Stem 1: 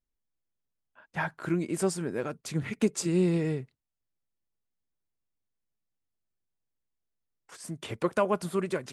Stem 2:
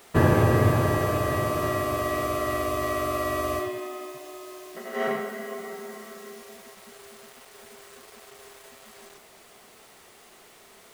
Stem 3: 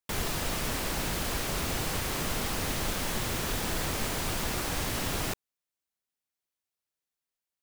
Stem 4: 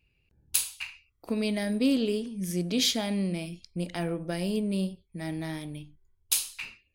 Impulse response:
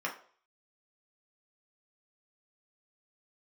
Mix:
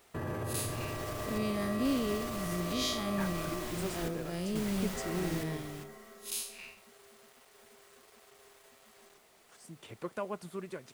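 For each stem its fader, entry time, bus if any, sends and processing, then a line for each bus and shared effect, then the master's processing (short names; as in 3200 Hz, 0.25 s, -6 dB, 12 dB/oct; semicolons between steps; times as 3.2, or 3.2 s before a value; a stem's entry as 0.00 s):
-11.5 dB, 2.00 s, no bus, no send, dry
-11.0 dB, 0.00 s, bus A, no send, dry
-10.0 dB, 0.50 s, bus A, no send, chopper 0.74 Hz, depth 65%, duty 65%
-5.0 dB, 0.00 s, no bus, no send, time blur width 0.116 s
bus A: 0.0 dB, limiter -29 dBFS, peak gain reduction 11 dB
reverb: off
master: dry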